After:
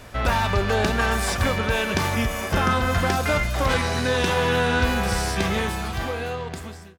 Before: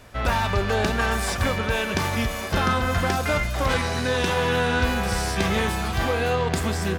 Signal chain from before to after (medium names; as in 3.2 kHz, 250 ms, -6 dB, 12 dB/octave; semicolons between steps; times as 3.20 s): fade out at the end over 1.90 s; 2.13–2.72 s: peaking EQ 4.1 kHz -7.5 dB 0.35 oct; in parallel at -2.5 dB: compression, threshold -35 dBFS, peak gain reduction 17 dB